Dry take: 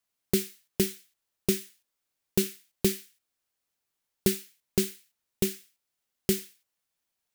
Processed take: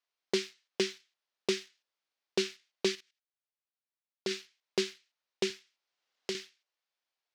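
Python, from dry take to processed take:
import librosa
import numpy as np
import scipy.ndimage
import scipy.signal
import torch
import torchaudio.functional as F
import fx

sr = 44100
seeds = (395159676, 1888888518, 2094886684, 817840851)

y = scipy.signal.sosfilt(scipy.signal.butter(2, 450.0, 'highpass', fs=sr, output='sos'), x)
y = fx.level_steps(y, sr, step_db=16, at=(2.95, 4.31))
y = scipy.signal.sosfilt(scipy.signal.butter(4, 5400.0, 'lowpass', fs=sr, output='sos'), y)
y = fx.leveller(y, sr, passes=1)
y = fx.band_squash(y, sr, depth_pct=40, at=(5.5, 6.35))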